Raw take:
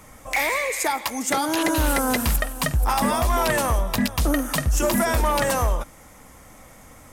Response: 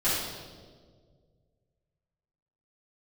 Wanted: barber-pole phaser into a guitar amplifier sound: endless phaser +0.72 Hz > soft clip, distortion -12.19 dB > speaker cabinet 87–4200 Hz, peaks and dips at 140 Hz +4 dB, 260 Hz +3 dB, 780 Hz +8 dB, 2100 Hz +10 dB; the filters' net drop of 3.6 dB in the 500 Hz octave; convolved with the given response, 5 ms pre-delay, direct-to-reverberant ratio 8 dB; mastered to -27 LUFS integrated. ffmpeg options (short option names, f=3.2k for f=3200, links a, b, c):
-filter_complex "[0:a]equalizer=f=500:t=o:g=-7.5,asplit=2[a][b];[1:a]atrim=start_sample=2205,adelay=5[c];[b][c]afir=irnorm=-1:irlink=0,volume=-20dB[d];[a][d]amix=inputs=2:normalize=0,asplit=2[e][f];[f]afreqshift=0.72[g];[e][g]amix=inputs=2:normalize=1,asoftclip=threshold=-23dB,highpass=87,equalizer=f=140:t=q:w=4:g=4,equalizer=f=260:t=q:w=4:g=3,equalizer=f=780:t=q:w=4:g=8,equalizer=f=2.1k:t=q:w=4:g=10,lowpass=f=4.2k:w=0.5412,lowpass=f=4.2k:w=1.3066,volume=0.5dB"